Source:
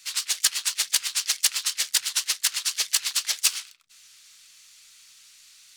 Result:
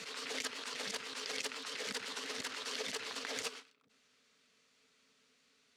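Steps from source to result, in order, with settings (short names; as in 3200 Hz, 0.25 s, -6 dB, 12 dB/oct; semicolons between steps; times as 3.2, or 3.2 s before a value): double band-pass 340 Hz, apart 0.73 oct; backwards sustainer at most 22 dB/s; gain +14 dB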